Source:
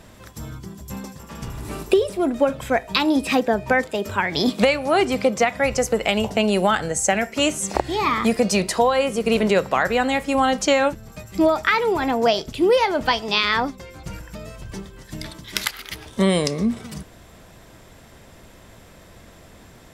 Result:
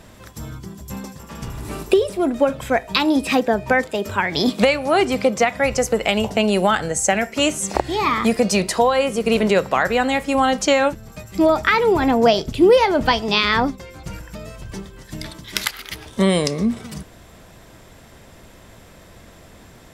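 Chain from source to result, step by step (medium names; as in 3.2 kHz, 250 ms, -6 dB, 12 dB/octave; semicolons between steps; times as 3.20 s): 11.49–13.76 s: bass shelf 380 Hz +7 dB; trim +1.5 dB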